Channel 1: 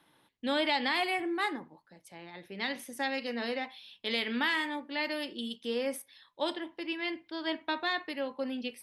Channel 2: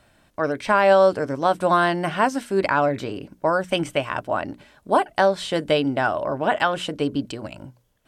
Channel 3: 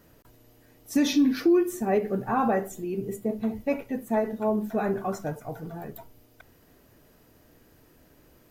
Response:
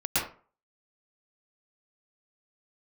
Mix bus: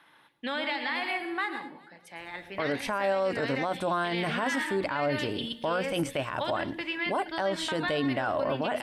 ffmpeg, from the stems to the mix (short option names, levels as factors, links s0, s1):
-filter_complex "[0:a]volume=0.668,asplit=3[s0][s1][s2];[s1]volume=0.178[s3];[s2]volume=0.141[s4];[1:a]adelay=2200,volume=0.75[s5];[s0]equalizer=f=1600:w=0.47:g=14.5,acompressor=threshold=0.0316:ratio=4,volume=1[s6];[3:a]atrim=start_sample=2205[s7];[s3][s7]afir=irnorm=-1:irlink=0[s8];[s4]aecho=0:1:201|402|603|804|1005|1206:1|0.46|0.212|0.0973|0.0448|0.0206[s9];[s5][s6][s8][s9]amix=inputs=4:normalize=0,alimiter=limit=0.1:level=0:latency=1:release=22"